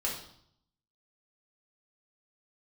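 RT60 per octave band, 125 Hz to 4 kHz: 0.95 s, 0.80 s, 0.65 s, 0.65 s, 0.55 s, 0.65 s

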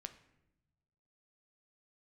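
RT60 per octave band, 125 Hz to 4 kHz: 1.7 s, 1.4 s, 1.1 s, 0.80 s, 0.80 s, 0.60 s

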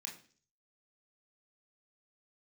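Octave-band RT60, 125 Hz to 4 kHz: 0.65 s, 0.55 s, 0.50 s, 0.40 s, 0.45 s, 0.55 s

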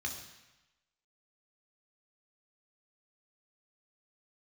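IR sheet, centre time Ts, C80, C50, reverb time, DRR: 28 ms, 8.5 dB, 6.5 dB, 1.0 s, 1.0 dB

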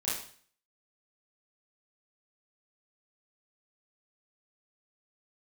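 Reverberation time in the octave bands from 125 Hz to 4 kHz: 0.60 s, 0.55 s, 0.50 s, 0.50 s, 0.50 s, 0.50 s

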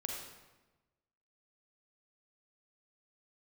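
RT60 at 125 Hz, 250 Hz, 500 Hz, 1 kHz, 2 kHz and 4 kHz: 1.4 s, 1.3 s, 1.2 s, 1.1 s, 1.0 s, 0.85 s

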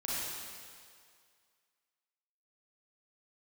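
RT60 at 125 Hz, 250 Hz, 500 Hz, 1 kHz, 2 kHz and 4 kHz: 1.8 s, 1.8 s, 2.1 s, 2.1 s, 2.0 s, 2.0 s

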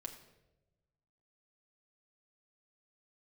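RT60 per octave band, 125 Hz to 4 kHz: 1.8 s, 1.3 s, 1.2 s, 0.80 s, 0.75 s, 0.70 s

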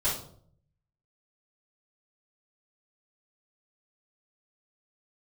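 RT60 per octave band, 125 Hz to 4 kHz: 1.0 s, 0.75 s, 0.65 s, 0.50 s, 0.35 s, 0.40 s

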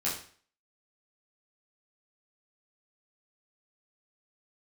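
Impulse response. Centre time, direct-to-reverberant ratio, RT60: 35 ms, -7.5 dB, 0.45 s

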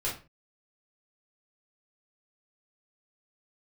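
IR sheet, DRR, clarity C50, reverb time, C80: -6.5 dB, 7.0 dB, 0.35 s, 13.5 dB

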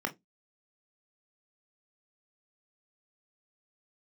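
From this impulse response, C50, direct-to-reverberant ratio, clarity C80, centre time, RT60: 21.0 dB, 4.5 dB, 31.0 dB, 8 ms, 0.15 s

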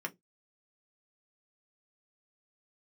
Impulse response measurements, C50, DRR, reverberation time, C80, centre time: 26.5 dB, 2.0 dB, no single decay rate, 37.0 dB, 5 ms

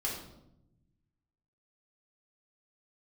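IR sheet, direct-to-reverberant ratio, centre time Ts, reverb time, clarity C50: -5.0 dB, 43 ms, 0.85 s, 3.5 dB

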